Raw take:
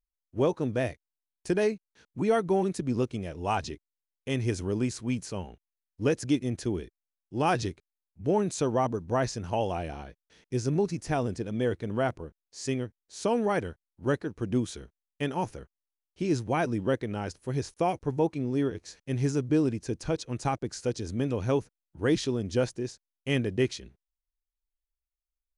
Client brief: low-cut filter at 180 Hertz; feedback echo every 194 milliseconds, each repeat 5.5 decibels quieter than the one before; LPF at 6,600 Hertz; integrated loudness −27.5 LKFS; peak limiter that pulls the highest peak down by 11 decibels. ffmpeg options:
ffmpeg -i in.wav -af "highpass=180,lowpass=6600,alimiter=limit=-23.5dB:level=0:latency=1,aecho=1:1:194|388|582|776|970|1164|1358:0.531|0.281|0.149|0.079|0.0419|0.0222|0.0118,volume=7.5dB" out.wav

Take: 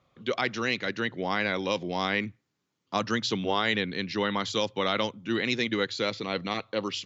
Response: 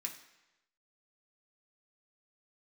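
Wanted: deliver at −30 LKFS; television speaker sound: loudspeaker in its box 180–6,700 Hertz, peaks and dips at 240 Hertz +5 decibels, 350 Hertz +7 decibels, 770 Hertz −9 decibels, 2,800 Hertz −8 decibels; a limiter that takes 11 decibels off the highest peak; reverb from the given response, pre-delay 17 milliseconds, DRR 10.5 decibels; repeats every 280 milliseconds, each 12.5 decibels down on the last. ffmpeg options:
-filter_complex "[0:a]alimiter=limit=-22dB:level=0:latency=1,aecho=1:1:280|560|840:0.237|0.0569|0.0137,asplit=2[link_01][link_02];[1:a]atrim=start_sample=2205,adelay=17[link_03];[link_02][link_03]afir=irnorm=-1:irlink=0,volume=-9dB[link_04];[link_01][link_04]amix=inputs=2:normalize=0,highpass=frequency=180:width=0.5412,highpass=frequency=180:width=1.3066,equalizer=frequency=240:width_type=q:width=4:gain=5,equalizer=frequency=350:width_type=q:width=4:gain=7,equalizer=frequency=770:width_type=q:width=4:gain=-9,equalizer=frequency=2800:width_type=q:width=4:gain=-8,lowpass=frequency=6700:width=0.5412,lowpass=frequency=6700:width=1.3066,volume=2.5dB"

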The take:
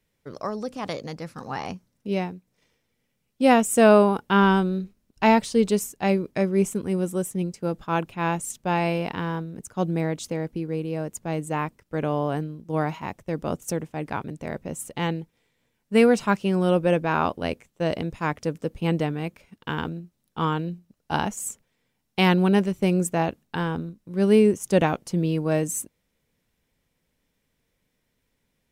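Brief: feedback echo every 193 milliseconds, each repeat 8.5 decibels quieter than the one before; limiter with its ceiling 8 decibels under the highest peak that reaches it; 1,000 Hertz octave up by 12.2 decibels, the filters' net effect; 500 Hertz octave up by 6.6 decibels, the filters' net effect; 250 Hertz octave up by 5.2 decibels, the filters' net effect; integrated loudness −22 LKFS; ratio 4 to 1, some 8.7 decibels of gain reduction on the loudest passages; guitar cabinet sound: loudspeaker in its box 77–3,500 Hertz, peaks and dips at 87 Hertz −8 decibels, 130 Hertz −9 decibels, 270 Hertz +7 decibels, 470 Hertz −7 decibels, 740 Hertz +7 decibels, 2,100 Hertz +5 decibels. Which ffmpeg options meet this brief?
ffmpeg -i in.wav -af "equalizer=frequency=250:width_type=o:gain=3.5,equalizer=frequency=500:width_type=o:gain=6,equalizer=frequency=1000:width_type=o:gain=9,acompressor=threshold=-15dB:ratio=4,alimiter=limit=-12dB:level=0:latency=1,highpass=77,equalizer=frequency=87:width_type=q:width=4:gain=-8,equalizer=frequency=130:width_type=q:width=4:gain=-9,equalizer=frequency=270:width_type=q:width=4:gain=7,equalizer=frequency=470:width_type=q:width=4:gain=-7,equalizer=frequency=740:width_type=q:width=4:gain=7,equalizer=frequency=2100:width_type=q:width=4:gain=5,lowpass=frequency=3500:width=0.5412,lowpass=frequency=3500:width=1.3066,aecho=1:1:193|386|579|772:0.376|0.143|0.0543|0.0206,volume=1dB" out.wav

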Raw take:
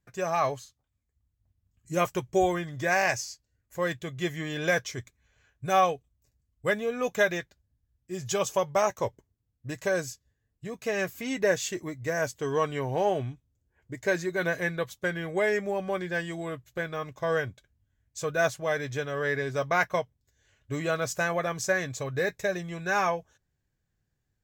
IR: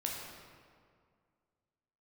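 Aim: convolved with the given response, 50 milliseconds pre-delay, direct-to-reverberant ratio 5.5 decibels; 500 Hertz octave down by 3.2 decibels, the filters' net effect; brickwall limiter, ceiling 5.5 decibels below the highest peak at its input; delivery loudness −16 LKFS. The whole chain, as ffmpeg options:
-filter_complex "[0:a]equalizer=frequency=500:width_type=o:gain=-4,alimiter=limit=-19dB:level=0:latency=1,asplit=2[link_01][link_02];[1:a]atrim=start_sample=2205,adelay=50[link_03];[link_02][link_03]afir=irnorm=-1:irlink=0,volume=-8dB[link_04];[link_01][link_04]amix=inputs=2:normalize=0,volume=15.5dB"

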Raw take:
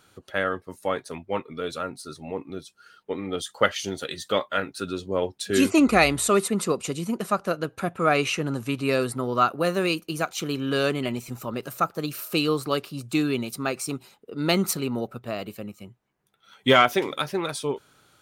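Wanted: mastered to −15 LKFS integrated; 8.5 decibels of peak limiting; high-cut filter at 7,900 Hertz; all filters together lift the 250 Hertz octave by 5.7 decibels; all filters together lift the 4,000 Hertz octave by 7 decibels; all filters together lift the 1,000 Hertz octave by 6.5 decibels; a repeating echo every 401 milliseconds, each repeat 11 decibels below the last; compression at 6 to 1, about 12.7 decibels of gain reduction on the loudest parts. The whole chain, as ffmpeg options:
ffmpeg -i in.wav -af "lowpass=7900,equalizer=frequency=250:width_type=o:gain=6.5,equalizer=frequency=1000:width_type=o:gain=8.5,equalizer=frequency=4000:width_type=o:gain=8.5,acompressor=threshold=-22dB:ratio=6,alimiter=limit=-16.5dB:level=0:latency=1,aecho=1:1:401|802|1203:0.282|0.0789|0.0221,volume=14dB" out.wav

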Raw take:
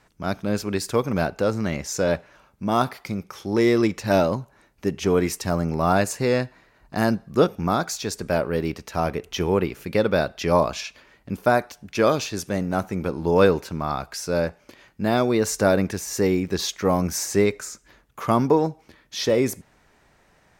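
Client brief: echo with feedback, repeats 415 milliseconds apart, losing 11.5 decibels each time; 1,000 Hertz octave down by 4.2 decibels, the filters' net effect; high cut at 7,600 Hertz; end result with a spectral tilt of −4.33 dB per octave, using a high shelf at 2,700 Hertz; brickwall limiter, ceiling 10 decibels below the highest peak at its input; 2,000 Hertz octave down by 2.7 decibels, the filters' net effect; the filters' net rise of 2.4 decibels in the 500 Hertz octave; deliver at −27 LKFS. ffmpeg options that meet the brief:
ffmpeg -i in.wav -af "lowpass=7600,equalizer=frequency=500:width_type=o:gain=5,equalizer=frequency=1000:width_type=o:gain=-9,equalizer=frequency=2000:width_type=o:gain=-4,highshelf=frequency=2700:gain=8.5,alimiter=limit=-12.5dB:level=0:latency=1,aecho=1:1:415|830|1245:0.266|0.0718|0.0194,volume=-2.5dB" out.wav

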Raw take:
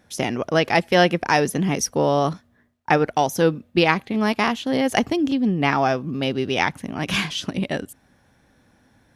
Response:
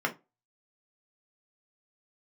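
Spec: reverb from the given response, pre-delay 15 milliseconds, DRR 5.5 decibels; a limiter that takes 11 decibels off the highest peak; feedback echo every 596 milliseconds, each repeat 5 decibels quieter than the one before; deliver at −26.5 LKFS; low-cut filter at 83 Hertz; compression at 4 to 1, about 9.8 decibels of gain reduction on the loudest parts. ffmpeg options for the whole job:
-filter_complex "[0:a]highpass=83,acompressor=threshold=-24dB:ratio=4,alimiter=limit=-19dB:level=0:latency=1,aecho=1:1:596|1192|1788|2384|2980|3576|4172:0.562|0.315|0.176|0.0988|0.0553|0.031|0.0173,asplit=2[link_01][link_02];[1:a]atrim=start_sample=2205,adelay=15[link_03];[link_02][link_03]afir=irnorm=-1:irlink=0,volume=-15dB[link_04];[link_01][link_04]amix=inputs=2:normalize=0,volume=1dB"

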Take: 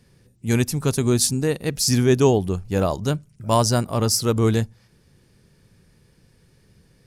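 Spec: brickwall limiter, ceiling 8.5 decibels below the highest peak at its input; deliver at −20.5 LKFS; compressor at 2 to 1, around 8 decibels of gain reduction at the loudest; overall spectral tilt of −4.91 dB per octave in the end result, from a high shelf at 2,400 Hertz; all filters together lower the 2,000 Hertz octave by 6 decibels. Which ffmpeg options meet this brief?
ffmpeg -i in.wav -af "equalizer=frequency=2000:width_type=o:gain=-6,highshelf=frequency=2400:gain=-4,acompressor=threshold=-27dB:ratio=2,volume=12dB,alimiter=limit=-9.5dB:level=0:latency=1" out.wav

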